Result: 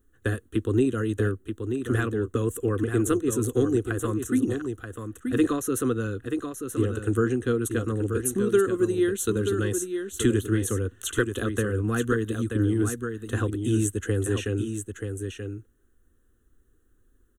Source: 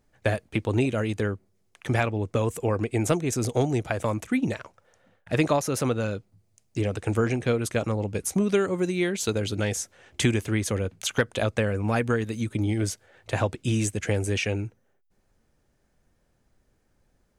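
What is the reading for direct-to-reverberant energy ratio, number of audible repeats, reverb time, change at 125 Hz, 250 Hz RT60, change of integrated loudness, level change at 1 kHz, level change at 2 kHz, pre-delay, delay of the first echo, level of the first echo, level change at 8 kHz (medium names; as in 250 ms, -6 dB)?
no reverb, 1, no reverb, -0.5 dB, no reverb, +0.5 dB, -4.0 dB, -2.0 dB, no reverb, 931 ms, -7.0 dB, +0.5 dB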